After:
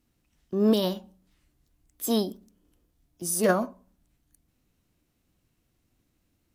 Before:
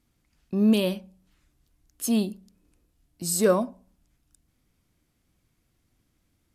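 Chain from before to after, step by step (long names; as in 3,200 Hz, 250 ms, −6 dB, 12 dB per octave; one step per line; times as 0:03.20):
formants moved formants +3 semitones
level −1.5 dB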